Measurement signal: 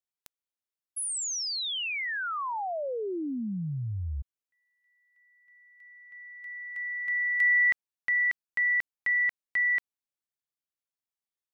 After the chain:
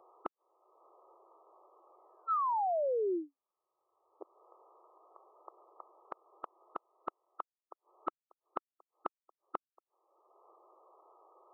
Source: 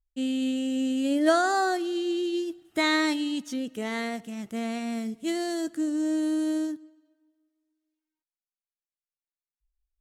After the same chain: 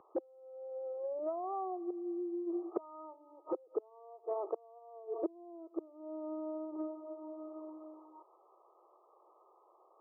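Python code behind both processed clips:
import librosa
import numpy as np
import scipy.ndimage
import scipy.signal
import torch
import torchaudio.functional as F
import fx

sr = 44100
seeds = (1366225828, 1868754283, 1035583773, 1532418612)

y = fx.gate_flip(x, sr, shuts_db=-24.0, range_db=-32)
y = fx.brickwall_bandpass(y, sr, low_hz=330.0, high_hz=1300.0)
y = fx.band_squash(y, sr, depth_pct=100)
y = F.gain(torch.from_numpy(y), 14.5).numpy()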